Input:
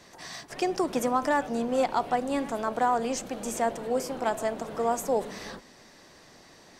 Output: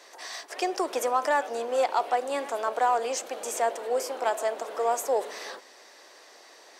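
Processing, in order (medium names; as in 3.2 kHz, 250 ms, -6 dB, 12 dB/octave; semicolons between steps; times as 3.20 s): high-pass 400 Hz 24 dB/octave; in parallel at -9 dB: saturation -27 dBFS, distortion -9 dB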